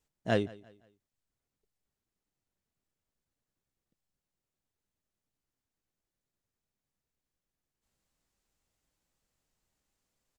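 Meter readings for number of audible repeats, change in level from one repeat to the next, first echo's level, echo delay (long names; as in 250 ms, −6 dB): 2, −8.5 dB, −22.0 dB, 172 ms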